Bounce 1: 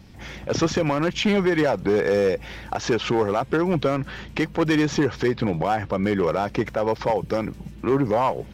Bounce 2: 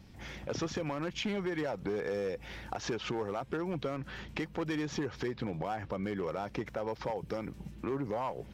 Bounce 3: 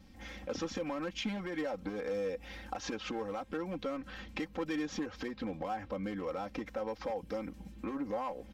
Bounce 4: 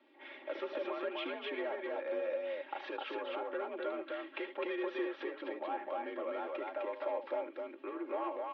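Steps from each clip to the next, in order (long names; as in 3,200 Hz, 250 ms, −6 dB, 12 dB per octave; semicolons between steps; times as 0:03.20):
downward compressor 2.5 to 1, threshold −27 dBFS, peak gain reduction 7.5 dB; level −7.5 dB
comb filter 3.8 ms, depth 90%; level −4.5 dB
loudspeakers that aren't time-aligned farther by 26 metres −11 dB, 88 metres −2 dB; single-sideband voice off tune +57 Hz 280–3,400 Hz; level −2 dB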